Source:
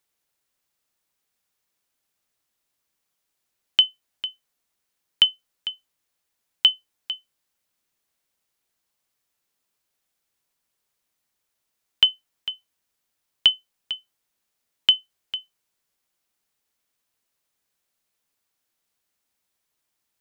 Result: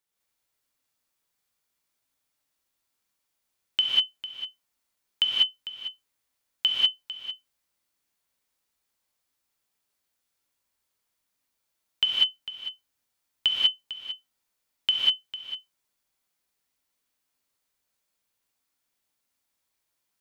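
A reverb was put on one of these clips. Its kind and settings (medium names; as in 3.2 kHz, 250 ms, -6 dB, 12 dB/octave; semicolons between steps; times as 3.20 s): gated-style reverb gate 220 ms rising, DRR -5 dB; trim -7.5 dB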